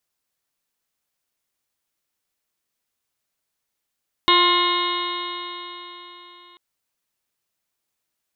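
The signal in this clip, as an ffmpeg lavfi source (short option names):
-f lavfi -i "aevalsrc='0.0891*pow(10,-3*t/3.89)*sin(2*PI*350.21*t)+0.02*pow(10,-3*t/3.89)*sin(2*PI*701.68*t)+0.178*pow(10,-3*t/3.89)*sin(2*PI*1055.65*t)+0.0316*pow(10,-3*t/3.89)*sin(2*PI*1413.38*t)+0.0299*pow(10,-3*t/3.89)*sin(2*PI*1776.06*t)+0.0794*pow(10,-3*t/3.89)*sin(2*PI*2144.88*t)+0.01*pow(10,-3*t/3.89)*sin(2*PI*2521*t)+0.0841*pow(10,-3*t/3.89)*sin(2*PI*2905.53*t)+0.0562*pow(10,-3*t/3.89)*sin(2*PI*3299.54*t)+0.133*pow(10,-3*t/3.89)*sin(2*PI*3704.05*t)+0.0398*pow(10,-3*t/3.89)*sin(2*PI*4120.04*t)':d=2.29:s=44100"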